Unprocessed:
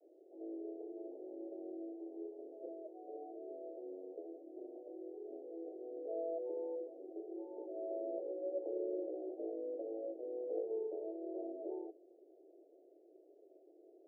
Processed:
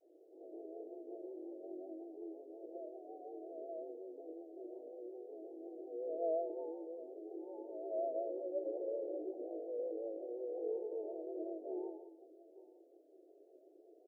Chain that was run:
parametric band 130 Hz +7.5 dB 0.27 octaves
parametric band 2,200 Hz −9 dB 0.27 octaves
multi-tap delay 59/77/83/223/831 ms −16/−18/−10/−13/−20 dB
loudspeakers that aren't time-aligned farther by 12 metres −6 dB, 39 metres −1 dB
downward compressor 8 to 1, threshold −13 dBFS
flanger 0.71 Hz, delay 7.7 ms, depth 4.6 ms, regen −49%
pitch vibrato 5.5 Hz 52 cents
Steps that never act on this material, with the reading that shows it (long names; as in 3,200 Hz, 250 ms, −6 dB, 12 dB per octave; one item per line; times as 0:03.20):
parametric band 130 Hz: nothing at its input below 270 Hz
parametric band 2,200 Hz: nothing at its input above 910 Hz
downward compressor, threshold −13 dBFS: peak of its input −23.5 dBFS